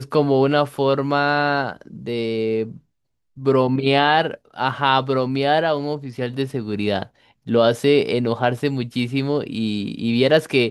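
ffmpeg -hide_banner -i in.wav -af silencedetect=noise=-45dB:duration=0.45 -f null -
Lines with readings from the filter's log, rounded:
silence_start: 2.79
silence_end: 3.37 | silence_duration: 0.58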